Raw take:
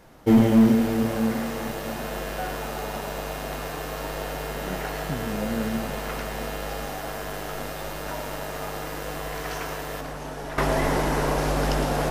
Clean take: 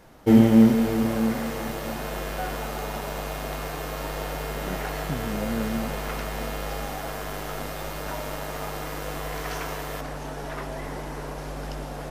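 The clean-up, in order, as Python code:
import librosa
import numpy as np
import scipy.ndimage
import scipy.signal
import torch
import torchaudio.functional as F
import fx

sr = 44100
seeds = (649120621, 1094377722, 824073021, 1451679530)

y = fx.fix_declip(x, sr, threshold_db=-10.5)
y = fx.fix_echo_inverse(y, sr, delay_ms=109, level_db=-11.5)
y = fx.fix_level(y, sr, at_s=10.58, step_db=-11.0)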